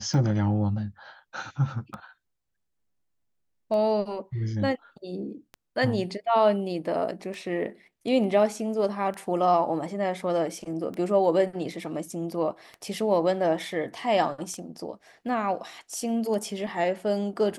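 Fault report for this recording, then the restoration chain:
tick 33 1/3 rpm -24 dBFS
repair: de-click

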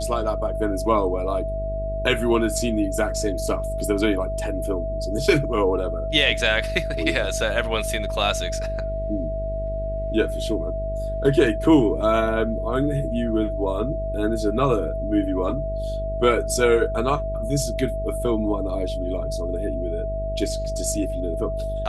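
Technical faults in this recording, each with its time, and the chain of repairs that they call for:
buzz 50 Hz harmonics 12 -29 dBFS
tone 650 Hz -27 dBFS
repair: de-hum 50 Hz, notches 12; notch 650 Hz, Q 30

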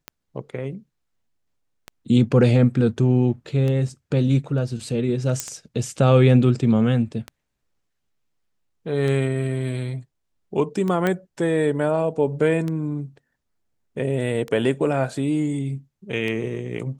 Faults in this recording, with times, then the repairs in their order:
tick 33 1/3 rpm -16 dBFS
5.4 pop -8 dBFS
11.07 pop -10 dBFS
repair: de-click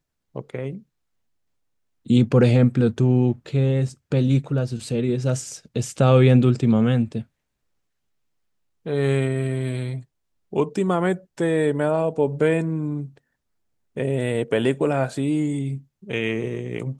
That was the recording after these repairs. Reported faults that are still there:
none

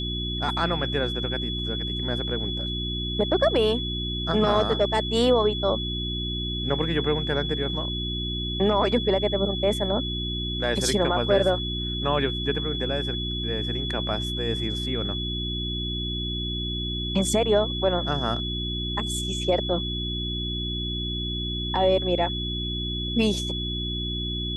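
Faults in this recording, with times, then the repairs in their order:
hum 60 Hz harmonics 6 -31 dBFS
tone 3400 Hz -30 dBFS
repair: de-hum 60 Hz, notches 6; notch 3400 Hz, Q 30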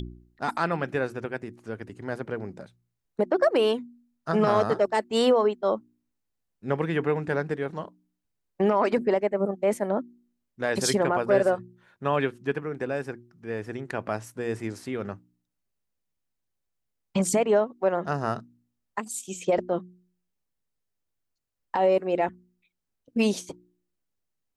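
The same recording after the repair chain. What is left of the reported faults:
none

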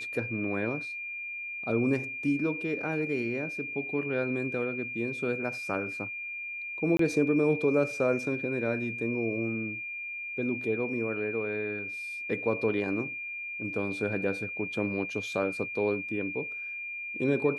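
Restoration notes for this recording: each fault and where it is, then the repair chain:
tone 2400 Hz -35 dBFS
6.97–6.99 gap 23 ms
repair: notch 2400 Hz, Q 30; interpolate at 6.97, 23 ms

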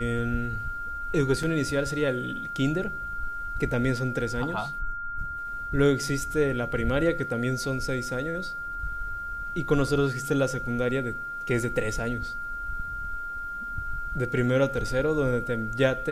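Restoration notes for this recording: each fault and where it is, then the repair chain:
tone 1400 Hz -32 dBFS
1.43 gap 3.5 ms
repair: notch 1400 Hz, Q 30; interpolate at 1.43, 3.5 ms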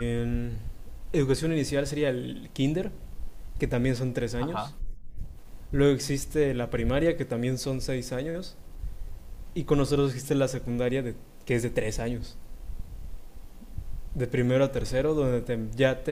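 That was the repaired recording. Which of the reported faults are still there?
none

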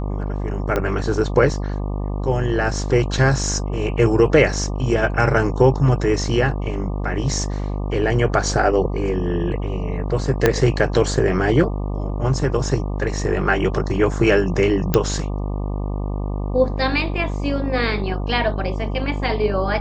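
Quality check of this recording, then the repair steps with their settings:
buzz 50 Hz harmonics 24 -24 dBFS
0.76 pop -8 dBFS
10.46 pop -1 dBFS
14.94 pop -3 dBFS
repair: de-click; de-hum 50 Hz, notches 24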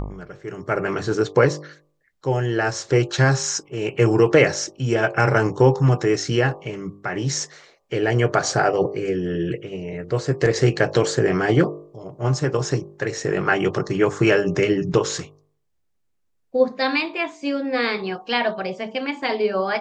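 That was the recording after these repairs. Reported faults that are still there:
0.76 pop
10.46 pop

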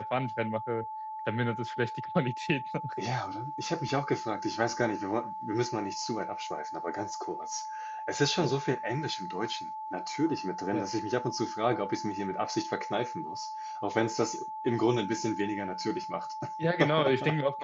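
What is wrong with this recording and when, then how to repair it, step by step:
tone 870 Hz -36 dBFS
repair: notch 870 Hz, Q 30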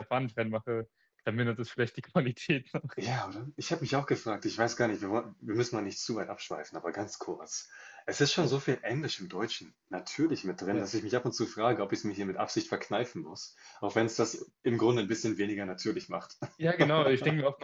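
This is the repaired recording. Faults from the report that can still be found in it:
none

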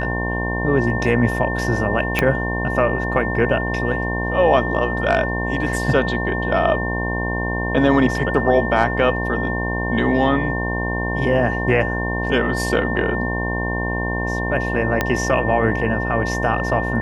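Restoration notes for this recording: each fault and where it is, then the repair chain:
buzz 60 Hz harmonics 18 -24 dBFS
tone 1800 Hz -25 dBFS
2.19 pop -3 dBFS
15.01 pop -4 dBFS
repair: de-click; notch 1800 Hz, Q 30; de-hum 60 Hz, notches 18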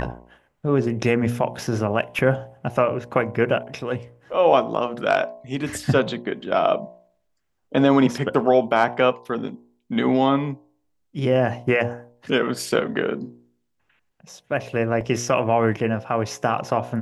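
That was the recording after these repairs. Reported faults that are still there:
2.19 pop
15.01 pop

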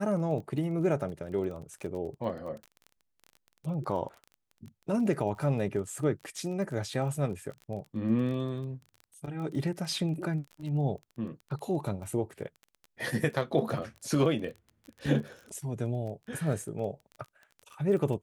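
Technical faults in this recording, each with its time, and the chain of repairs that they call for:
crackle 23/s -38 dBFS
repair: de-click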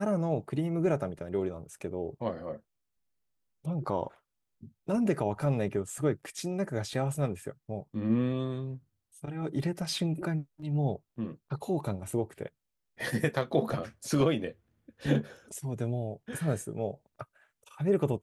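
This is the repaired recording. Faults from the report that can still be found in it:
none

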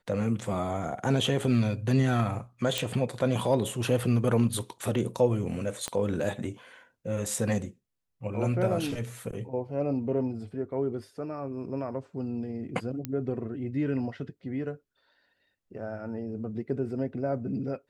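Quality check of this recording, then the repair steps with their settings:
2.78 pop
5.88 pop -17 dBFS
13.05 pop -17 dBFS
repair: de-click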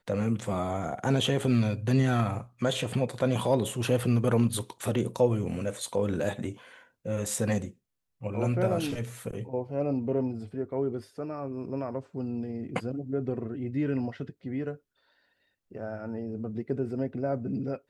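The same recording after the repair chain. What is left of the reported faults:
5.88 pop

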